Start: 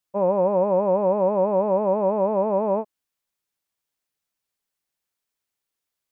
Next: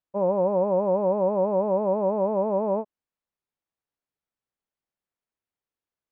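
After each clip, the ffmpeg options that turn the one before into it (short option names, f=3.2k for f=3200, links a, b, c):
-af "lowpass=f=1.1k:p=1,volume=-1.5dB"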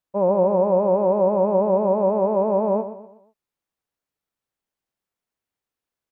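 -af "aecho=1:1:123|246|369|492:0.251|0.1|0.0402|0.0161,volume=4dB"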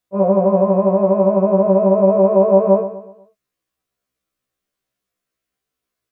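-af "asuperstop=centerf=870:order=4:qfactor=4.7,afftfilt=real='re*1.73*eq(mod(b,3),0)':imag='im*1.73*eq(mod(b,3),0)':win_size=2048:overlap=0.75,volume=8.5dB"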